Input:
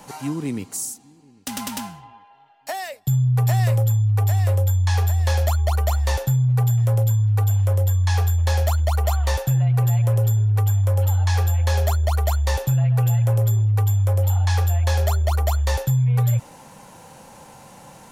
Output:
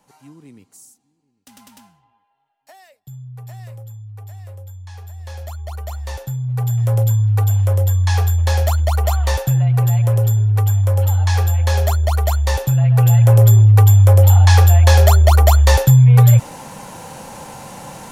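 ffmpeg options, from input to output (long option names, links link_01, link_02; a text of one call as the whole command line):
ffmpeg -i in.wav -af "volume=10dB,afade=type=in:start_time=5.02:duration=1.41:silence=0.266073,afade=type=in:start_time=6.43:duration=0.58:silence=0.375837,afade=type=in:start_time=12.73:duration=0.76:silence=0.473151" out.wav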